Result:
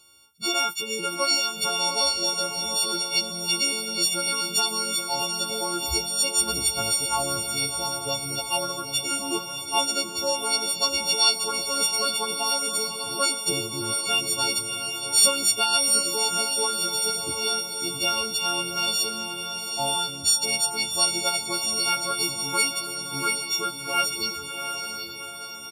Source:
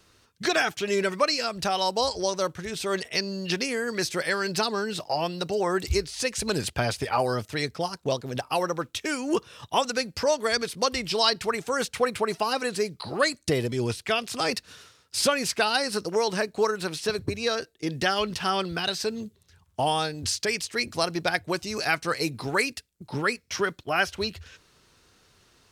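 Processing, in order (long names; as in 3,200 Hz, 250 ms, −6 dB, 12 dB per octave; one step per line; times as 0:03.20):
every partial snapped to a pitch grid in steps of 4 semitones
Butterworth band-reject 1,800 Hz, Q 2
low-shelf EQ 400 Hz −4.5 dB
double-tracking delay 15 ms −9 dB
feedback delay with all-pass diffusion 744 ms, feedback 54%, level −6 dB
level −3.5 dB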